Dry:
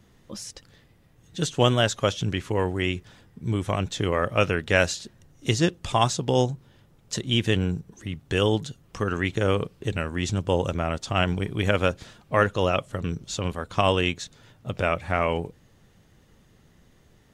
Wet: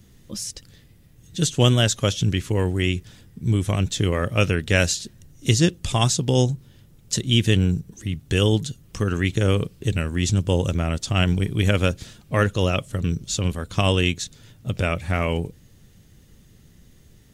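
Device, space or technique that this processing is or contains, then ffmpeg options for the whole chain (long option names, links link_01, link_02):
smiley-face EQ: -af "lowshelf=frequency=190:gain=4,equalizer=frequency=910:width_type=o:width=2:gain=-8.5,highshelf=frequency=7000:gain=8,volume=4dB"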